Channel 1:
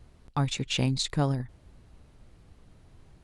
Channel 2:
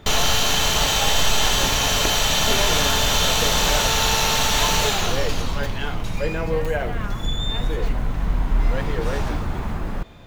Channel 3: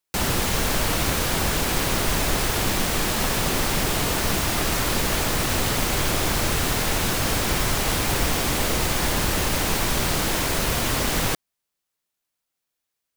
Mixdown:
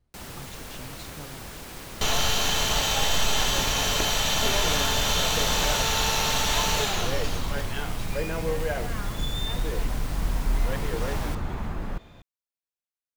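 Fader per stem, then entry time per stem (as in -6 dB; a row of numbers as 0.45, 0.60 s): -17.5, -5.0, -17.0 dB; 0.00, 1.95, 0.00 s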